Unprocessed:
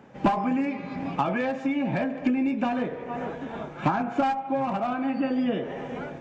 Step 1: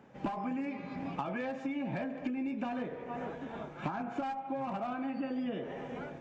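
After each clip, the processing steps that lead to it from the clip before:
downward compressor, threshold −25 dBFS, peak gain reduction 8 dB
level −7 dB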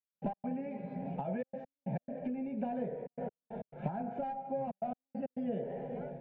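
low-pass filter 1,200 Hz 12 dB per octave
gate pattern "..x.xxxxxxxxx.x" 137 BPM −60 dB
phaser with its sweep stopped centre 310 Hz, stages 6
level +3.5 dB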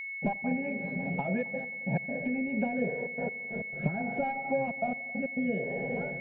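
rotating-speaker cabinet horn 5.5 Hz, later 0.6 Hz, at 0:02.16
steady tone 2,200 Hz −43 dBFS
echo machine with several playback heads 89 ms, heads all three, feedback 46%, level −23 dB
level +7 dB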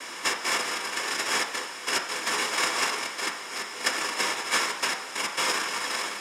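low-pass filter 2,100 Hz
cochlear-implant simulation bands 1
convolution reverb RT60 0.65 s, pre-delay 3 ms, DRR 3 dB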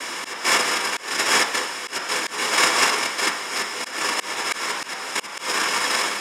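volume swells 255 ms
level +8 dB

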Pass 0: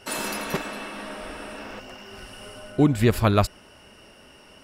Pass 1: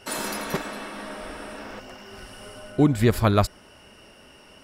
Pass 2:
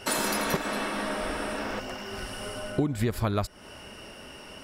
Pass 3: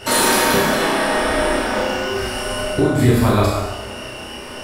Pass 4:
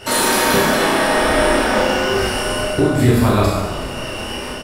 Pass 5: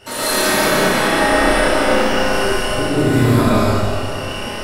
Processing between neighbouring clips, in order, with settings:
dynamic equaliser 2,700 Hz, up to −6 dB, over −52 dBFS, Q 6.2
downward compressor 8 to 1, threshold −29 dBFS, peak gain reduction 16 dB; level +5.5 dB
flutter between parallel walls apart 5.6 metres, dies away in 0.46 s; dense smooth reverb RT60 1.3 s, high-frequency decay 0.8×, DRR −4 dB; level +6 dB
automatic gain control gain up to 7.5 dB; echo with shifted repeats 369 ms, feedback 58%, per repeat −50 Hz, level −14.5 dB; level −1 dB
comb and all-pass reverb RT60 1.9 s, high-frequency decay 0.9×, pre-delay 70 ms, DRR −9 dB; level −8.5 dB

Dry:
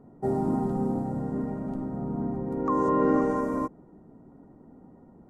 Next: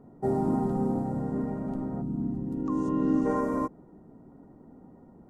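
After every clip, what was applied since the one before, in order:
gain on a spectral selection 0:02.01–0:03.26, 370–2,500 Hz −12 dB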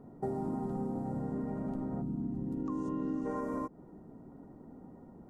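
downward compressor 5 to 1, threshold −33 dBFS, peak gain reduction 11.5 dB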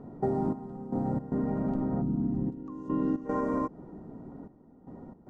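gate pattern "xxxx...xx.xxxxx" 114 BPM −12 dB
high-frequency loss of the air 89 metres
level +7 dB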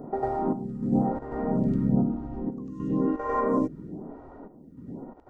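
on a send: backwards echo 98 ms −4.5 dB
on the sum: phaser with staggered stages 1 Hz
level +7 dB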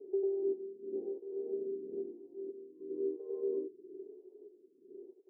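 flat-topped band-pass 390 Hz, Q 5.8

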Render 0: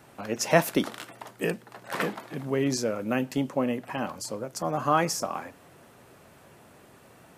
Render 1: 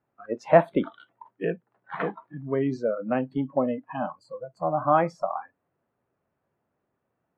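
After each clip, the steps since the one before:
low-pass filter 1,700 Hz 12 dB per octave
noise reduction from a noise print of the clip's start 24 dB
dynamic equaliser 660 Hz, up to +6 dB, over −39 dBFS, Q 1.7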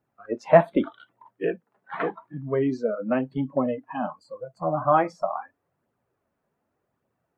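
flanger 0.85 Hz, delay 0.2 ms, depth 4.8 ms, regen −34%
level +5 dB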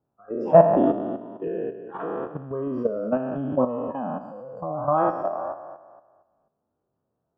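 peak hold with a decay on every bin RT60 1.38 s
output level in coarse steps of 10 dB
moving average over 21 samples
level +2.5 dB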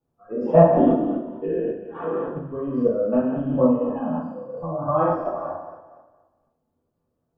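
rectangular room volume 32 cubic metres, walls mixed, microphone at 1.7 metres
level −8.5 dB

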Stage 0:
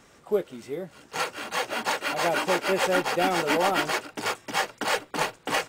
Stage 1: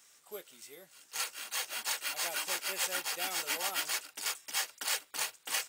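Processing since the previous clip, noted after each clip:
first-order pre-emphasis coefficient 0.97
level +2 dB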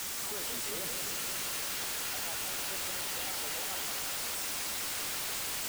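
sign of each sample alone
bit-depth reduction 6 bits, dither triangular
feedback echo with a swinging delay time 175 ms, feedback 75%, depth 215 cents, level −5.5 dB
level −4 dB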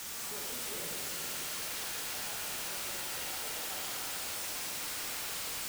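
convolution reverb RT60 1.6 s, pre-delay 27 ms, DRR 0.5 dB
level −5 dB

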